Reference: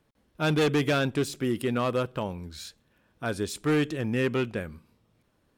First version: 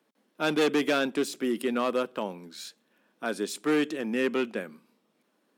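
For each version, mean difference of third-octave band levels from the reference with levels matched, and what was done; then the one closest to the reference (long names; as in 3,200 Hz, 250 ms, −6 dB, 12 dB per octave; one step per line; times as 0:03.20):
3.0 dB: Butterworth high-pass 200 Hz 36 dB per octave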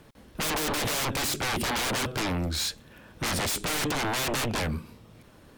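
13.5 dB: sine wavefolder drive 19 dB, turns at −18 dBFS
level −7 dB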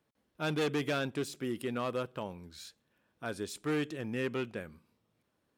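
1.0 dB: high-pass filter 150 Hz 6 dB per octave
level −7 dB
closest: third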